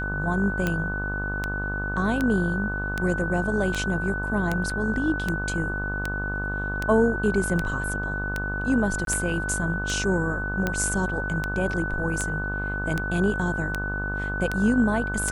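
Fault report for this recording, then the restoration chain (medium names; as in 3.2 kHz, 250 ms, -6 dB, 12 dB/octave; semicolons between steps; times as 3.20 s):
buzz 50 Hz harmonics 33 -31 dBFS
tick 78 rpm -11 dBFS
whine 1.5 kHz -29 dBFS
4.70 s: dropout 4 ms
9.05–9.07 s: dropout 22 ms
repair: de-click; de-hum 50 Hz, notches 33; band-stop 1.5 kHz, Q 30; interpolate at 4.70 s, 4 ms; interpolate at 9.05 s, 22 ms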